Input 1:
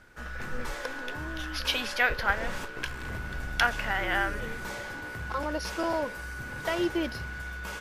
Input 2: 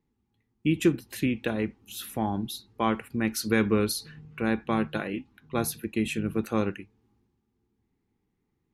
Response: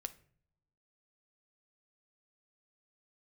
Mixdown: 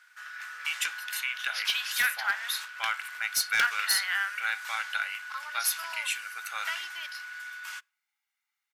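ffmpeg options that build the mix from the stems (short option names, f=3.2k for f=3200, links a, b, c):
-filter_complex "[0:a]volume=-0.5dB,asplit=2[a][b];[b]volume=-11.5dB[c];[1:a]aecho=1:1:1.4:0.55,volume=2.5dB,asplit=2[d][e];[e]volume=-9dB[f];[2:a]atrim=start_sample=2205[g];[c][f]amix=inputs=2:normalize=0[h];[h][g]afir=irnorm=-1:irlink=0[i];[a][d][i]amix=inputs=3:normalize=0,highpass=f=1.3k:w=0.5412,highpass=f=1.3k:w=1.3066,volume=18.5dB,asoftclip=hard,volume=-18.5dB"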